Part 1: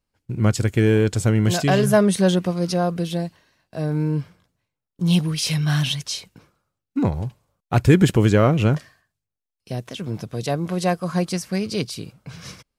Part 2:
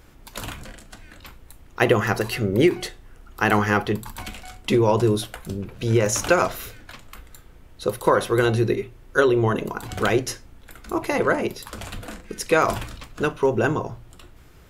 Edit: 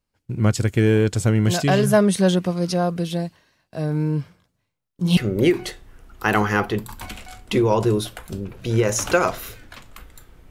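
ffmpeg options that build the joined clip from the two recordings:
-filter_complex "[0:a]asettb=1/sr,asplit=3[s0][s1][s2];[s0]atrim=end=4.504[s3];[s1]atrim=start=4.5:end=5.17,asetpts=PTS-STARTPTS,afade=t=in:d=0.004:c=qsin,afade=t=out:st=0.666:d=0.004:c=qsin,asplit=2[s4][s5];[s5]adelay=39,volume=0.562[s6];[s4][s6]amix=inputs=2:normalize=0,atrim=end_sample=29547[s7];[s2]atrim=start=5.166[s8];[s3][s7]acrossfade=d=0.004:c1=hsin:c2=qsin[s9];[s9][s8]acrossfade=d=0.004:c1=qsin:c2=hsin,apad=whole_dur=10.5,atrim=end=10.5,atrim=end=5.172[s10];[1:a]atrim=start=2.338:end=7.67[s11];[s10][s11]acrossfade=d=0.004:c1=hsin:c2=hsin"

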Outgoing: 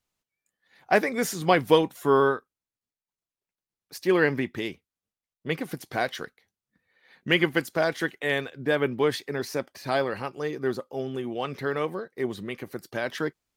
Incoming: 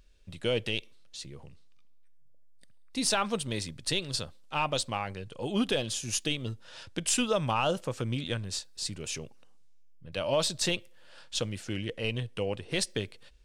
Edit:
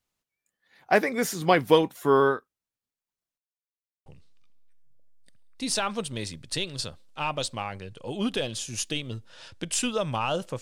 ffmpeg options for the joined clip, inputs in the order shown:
-filter_complex "[0:a]apad=whole_dur=10.61,atrim=end=10.61,asplit=2[s0][s1];[s0]atrim=end=3.38,asetpts=PTS-STARTPTS,afade=t=out:st=3.376:d=0.004:c=hsin[s2];[s1]atrim=start=3.38:end=4.06,asetpts=PTS-STARTPTS,volume=0[s3];[1:a]atrim=start=1.41:end=7.96,asetpts=PTS-STARTPTS,afade=t=in:d=0.004:c=hsin[s4];[s2][s3][s4]concat=n=3:v=0:a=1"

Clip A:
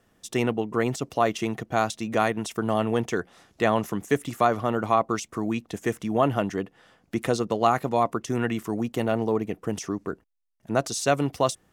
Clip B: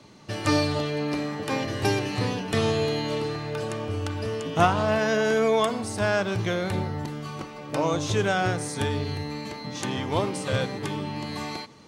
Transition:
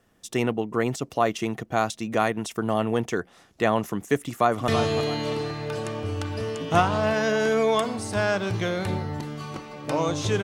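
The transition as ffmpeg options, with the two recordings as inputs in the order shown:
-filter_complex "[0:a]apad=whole_dur=10.43,atrim=end=10.43,atrim=end=4.682[s0];[1:a]atrim=start=2.528:end=8.28[s1];[s0][s1]acrossfade=d=0.004:c1=hsin:c2=hsin,asplit=2[s2][s3];[s3]afade=t=in:st=4.18:d=0.01,afade=t=out:st=4.68:d=0.01,aecho=0:1:330|660|990|1320:0.398107|0.139338|0.0487681|0.0170688[s4];[s2][s4]amix=inputs=2:normalize=0"

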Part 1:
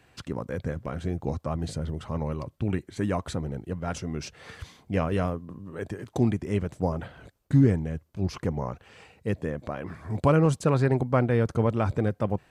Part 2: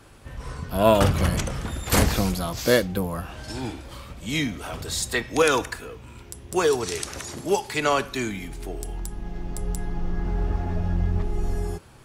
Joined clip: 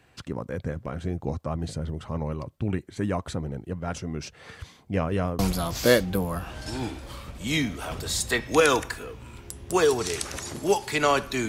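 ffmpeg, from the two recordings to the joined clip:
-filter_complex "[0:a]apad=whole_dur=11.48,atrim=end=11.48,atrim=end=5.392[s0];[1:a]atrim=start=2.208:end=8.3[s1];[s0][s1]acrossfade=d=0.004:c1=hsin:c2=hsin"

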